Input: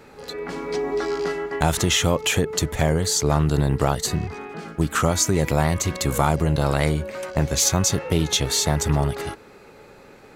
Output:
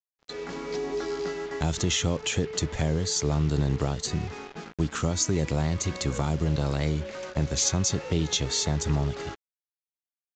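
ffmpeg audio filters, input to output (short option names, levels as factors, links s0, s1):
-filter_complex "[0:a]acrossover=split=440|3000[s0][s1][s2];[s1]acompressor=threshold=0.0224:ratio=2.5[s3];[s0][s3][s2]amix=inputs=3:normalize=0,agate=range=0.355:threshold=0.0178:ratio=16:detection=peak,acrusher=bits=5:mix=0:aa=0.5,aresample=16000,aresample=44100,volume=0.596"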